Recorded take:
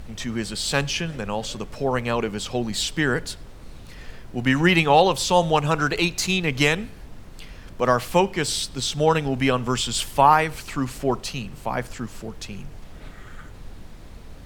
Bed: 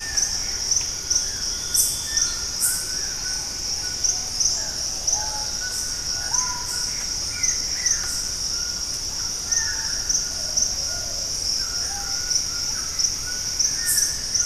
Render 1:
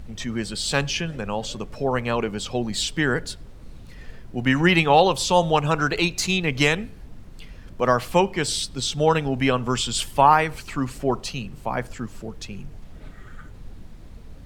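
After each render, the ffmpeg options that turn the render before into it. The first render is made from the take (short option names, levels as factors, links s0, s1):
-af "afftdn=nr=6:nf=-42"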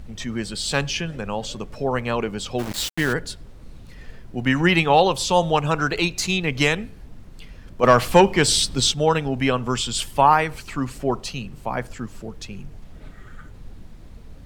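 -filter_complex "[0:a]asplit=3[s0][s1][s2];[s0]afade=t=out:st=2.58:d=0.02[s3];[s1]aeval=exprs='val(0)*gte(abs(val(0)),0.0501)':c=same,afade=t=in:st=2.58:d=0.02,afade=t=out:st=3.12:d=0.02[s4];[s2]afade=t=in:st=3.12:d=0.02[s5];[s3][s4][s5]amix=inputs=3:normalize=0,asettb=1/sr,asplit=3[s6][s7][s8];[s6]atrim=end=7.834[s9];[s7]atrim=start=7.83:end=8.92,asetpts=PTS-STARTPTS,afade=t=in:d=0.004:c=qsin,afade=t=out:st=1.086:d=0.004:c=qsin,acontrast=80[s10];[s8]atrim=start=8.916[s11];[s9][s10]acrossfade=d=0.004:c1=hsin:c2=qsin[s12];[s12][s11]acrossfade=d=0.004:c1=qsin:c2=hsin"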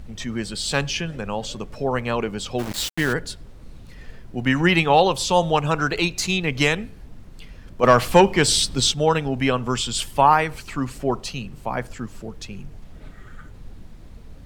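-af anull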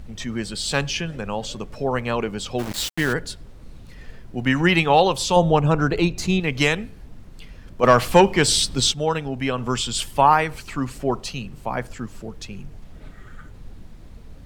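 -filter_complex "[0:a]asettb=1/sr,asplit=3[s0][s1][s2];[s0]atrim=end=5.364[s3];[s1]atrim=start=5.36:end=6.4,asetpts=PTS-STARTPTS,afade=t=in:d=0.004:c=qsin,afade=t=out:st=1.036:d=0.004:c=qsin,tiltshelf=f=900:g=6[s4];[s2]atrim=start=6.396[s5];[s3][s4]acrossfade=d=0.004:c1=hsin:c2=qsin[s6];[s6][s5]acrossfade=d=0.004:c1=qsin:c2=hsin,asplit=3[s7][s8][s9];[s7]atrim=end=8.932[s10];[s8]atrim=start=8.928:end=9.582,asetpts=PTS-STARTPTS,volume=0.668[s11];[s9]atrim=start=9.578[s12];[s10][s11]acrossfade=d=0.004:c1=hsin:c2=hsin[s13];[s13][s12]acrossfade=d=0.004:c1=hsin:c2=hsin"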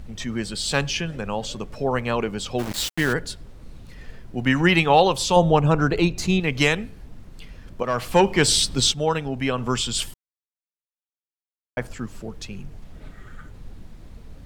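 -filter_complex "[0:a]asplit=4[s0][s1][s2][s3];[s0]atrim=end=7.83,asetpts=PTS-STARTPTS,afade=t=out:st=7.826:d=0.004:c=hsin:silence=0.188365[s4];[s1]atrim=start=7.83:end=10.14,asetpts=PTS-STARTPTS,afade=t=in:d=0.6:silence=0.188365,afade=t=out:st=2.306:d=0.004:c=hsin[s5];[s2]atrim=start=10.14:end=11.77,asetpts=PTS-STARTPTS,volume=0[s6];[s3]atrim=start=11.77,asetpts=PTS-STARTPTS,afade=t=in:d=0.004:c=hsin[s7];[s4][s5][s6][s7]concat=n=4:v=0:a=1"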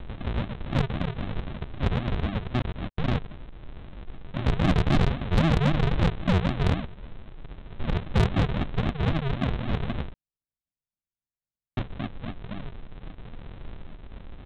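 -af "aresample=8000,acrusher=samples=23:mix=1:aa=0.000001:lfo=1:lforange=13.8:lforate=3.8,aresample=44100,asoftclip=type=tanh:threshold=0.178"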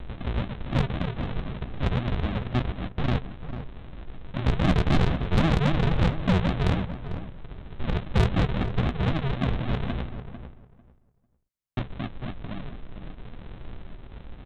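-filter_complex "[0:a]asplit=2[s0][s1];[s1]adelay=16,volume=0.224[s2];[s0][s2]amix=inputs=2:normalize=0,asplit=2[s3][s4];[s4]adelay=447,lowpass=f=1700:p=1,volume=0.316,asplit=2[s5][s6];[s6]adelay=447,lowpass=f=1700:p=1,volume=0.18,asplit=2[s7][s8];[s8]adelay=447,lowpass=f=1700:p=1,volume=0.18[s9];[s3][s5][s7][s9]amix=inputs=4:normalize=0"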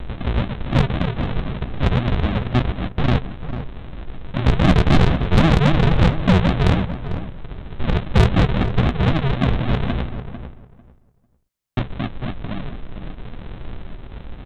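-af "volume=2.37"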